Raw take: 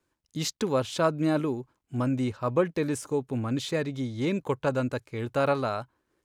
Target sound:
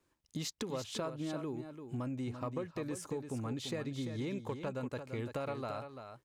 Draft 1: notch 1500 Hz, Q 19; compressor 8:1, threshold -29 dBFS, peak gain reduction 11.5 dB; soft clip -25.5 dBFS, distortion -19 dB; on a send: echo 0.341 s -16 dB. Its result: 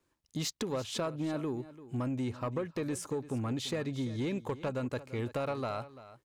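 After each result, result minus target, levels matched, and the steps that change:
compressor: peak gain reduction -5.5 dB; echo-to-direct -7.5 dB
change: compressor 8:1, threshold -35.5 dBFS, peak gain reduction 17 dB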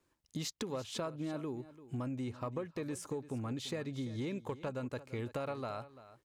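echo-to-direct -7.5 dB
change: echo 0.341 s -8.5 dB

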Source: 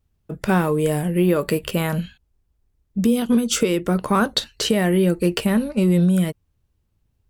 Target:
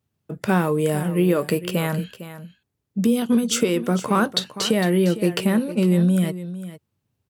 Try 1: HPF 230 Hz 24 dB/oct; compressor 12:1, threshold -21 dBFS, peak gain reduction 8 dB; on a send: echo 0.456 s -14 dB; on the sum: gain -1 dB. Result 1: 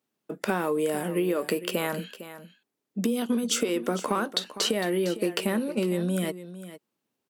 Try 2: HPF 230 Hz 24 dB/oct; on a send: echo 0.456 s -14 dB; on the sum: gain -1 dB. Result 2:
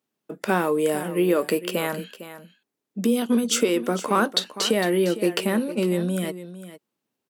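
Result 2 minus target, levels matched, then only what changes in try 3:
125 Hz band -7.0 dB
change: HPF 100 Hz 24 dB/oct

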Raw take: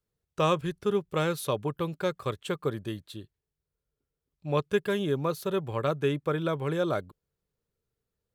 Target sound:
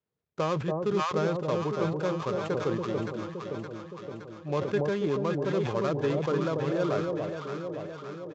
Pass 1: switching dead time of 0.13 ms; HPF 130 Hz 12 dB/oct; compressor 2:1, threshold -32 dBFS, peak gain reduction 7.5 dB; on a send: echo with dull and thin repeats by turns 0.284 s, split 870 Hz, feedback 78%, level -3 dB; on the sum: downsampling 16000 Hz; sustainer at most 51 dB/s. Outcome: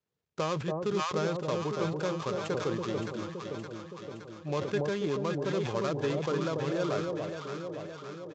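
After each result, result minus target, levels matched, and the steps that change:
8000 Hz band +6.5 dB; compressor: peak gain reduction +3.5 dB
add after HPF: high shelf 3000 Hz -8.5 dB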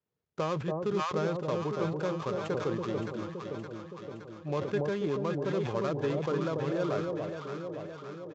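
compressor: peak gain reduction +3 dB
change: compressor 2:1, threshold -25.5 dBFS, peak gain reduction 3.5 dB

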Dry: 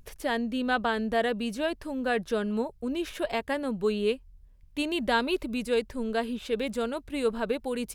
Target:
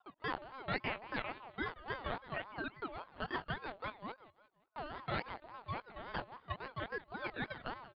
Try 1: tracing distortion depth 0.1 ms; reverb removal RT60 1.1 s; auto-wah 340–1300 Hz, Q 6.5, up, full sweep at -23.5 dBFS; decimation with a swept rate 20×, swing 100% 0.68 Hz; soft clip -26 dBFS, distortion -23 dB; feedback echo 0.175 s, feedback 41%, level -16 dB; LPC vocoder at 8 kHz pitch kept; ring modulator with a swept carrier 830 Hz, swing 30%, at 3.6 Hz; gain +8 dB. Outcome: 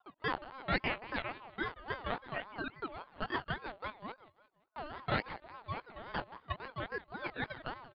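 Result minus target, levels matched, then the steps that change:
soft clip: distortion -13 dB
change: soft clip -37 dBFS, distortion -9 dB

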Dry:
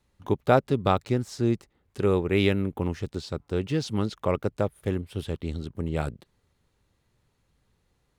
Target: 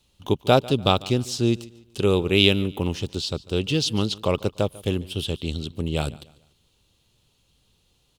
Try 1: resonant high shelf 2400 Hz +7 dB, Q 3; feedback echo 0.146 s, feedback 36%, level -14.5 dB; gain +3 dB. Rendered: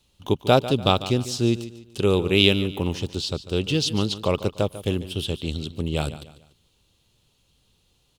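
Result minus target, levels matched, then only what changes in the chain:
echo-to-direct +6.5 dB
change: feedback echo 0.146 s, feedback 36%, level -21 dB

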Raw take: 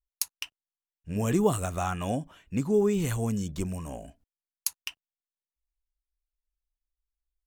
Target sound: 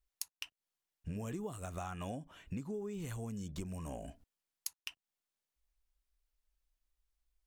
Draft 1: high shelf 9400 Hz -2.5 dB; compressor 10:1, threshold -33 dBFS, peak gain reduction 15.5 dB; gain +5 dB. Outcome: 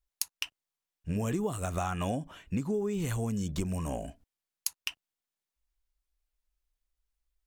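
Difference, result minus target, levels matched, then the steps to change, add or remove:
compressor: peak gain reduction -10 dB
change: compressor 10:1, threshold -44 dBFS, peak gain reduction 25.5 dB

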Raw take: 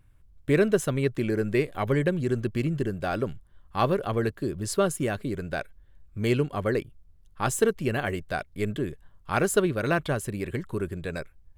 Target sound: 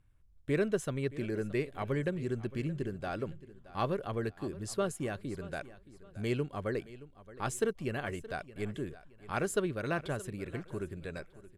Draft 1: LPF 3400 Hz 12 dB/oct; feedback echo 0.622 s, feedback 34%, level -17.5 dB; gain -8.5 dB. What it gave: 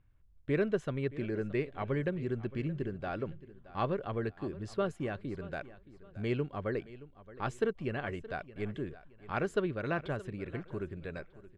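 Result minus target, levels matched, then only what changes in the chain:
8000 Hz band -15.0 dB
change: LPF 11000 Hz 12 dB/oct

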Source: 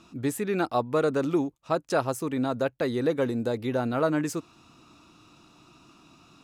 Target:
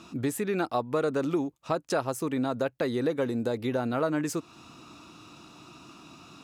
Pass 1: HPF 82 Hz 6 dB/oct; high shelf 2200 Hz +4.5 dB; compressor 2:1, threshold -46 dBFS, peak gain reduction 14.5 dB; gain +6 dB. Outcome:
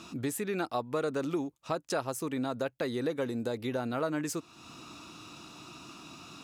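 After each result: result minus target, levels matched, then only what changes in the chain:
compressor: peak gain reduction +5 dB; 4000 Hz band +3.5 dB
change: compressor 2:1, threshold -37 dBFS, peak gain reduction 10 dB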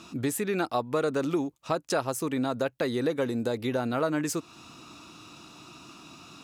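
4000 Hz band +3.0 dB
remove: high shelf 2200 Hz +4.5 dB

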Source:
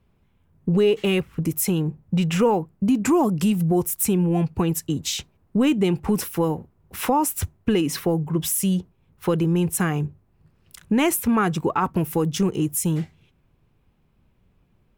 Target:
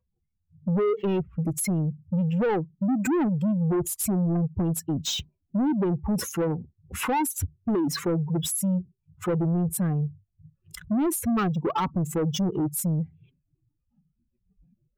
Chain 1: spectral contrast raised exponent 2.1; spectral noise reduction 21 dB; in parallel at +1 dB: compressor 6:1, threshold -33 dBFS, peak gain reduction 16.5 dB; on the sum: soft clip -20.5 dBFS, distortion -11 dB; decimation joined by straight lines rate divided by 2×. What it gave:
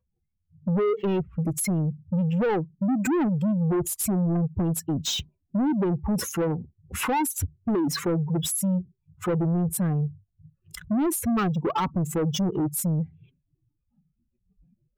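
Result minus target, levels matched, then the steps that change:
compressor: peak gain reduction -8 dB
change: compressor 6:1, threshold -42.5 dBFS, peak gain reduction 24.5 dB

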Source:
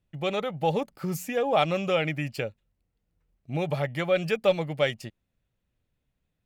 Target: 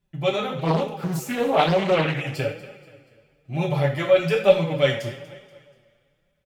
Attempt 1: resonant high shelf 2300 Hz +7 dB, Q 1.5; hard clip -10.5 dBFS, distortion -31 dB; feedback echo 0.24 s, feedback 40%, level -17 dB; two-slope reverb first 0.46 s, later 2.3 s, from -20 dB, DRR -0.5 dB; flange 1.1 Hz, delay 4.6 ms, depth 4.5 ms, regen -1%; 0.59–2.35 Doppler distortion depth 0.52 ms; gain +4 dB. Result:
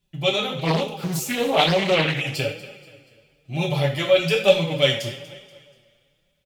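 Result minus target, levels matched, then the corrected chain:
4000 Hz band +7.5 dB
hard clip -10.5 dBFS, distortion -50 dB; feedback echo 0.24 s, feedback 40%, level -17 dB; two-slope reverb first 0.46 s, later 2.3 s, from -20 dB, DRR -0.5 dB; flange 1.1 Hz, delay 4.6 ms, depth 4.5 ms, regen -1%; 0.59–2.35 Doppler distortion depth 0.52 ms; gain +4 dB

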